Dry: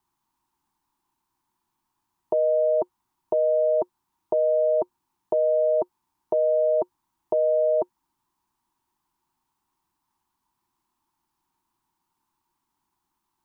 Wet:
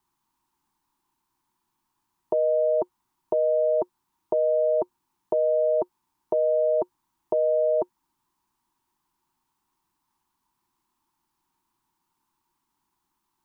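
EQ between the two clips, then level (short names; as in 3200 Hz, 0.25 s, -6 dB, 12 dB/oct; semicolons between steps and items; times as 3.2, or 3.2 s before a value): bell 77 Hz -3 dB 1 oct; bell 670 Hz -3 dB 0.77 oct; +1.5 dB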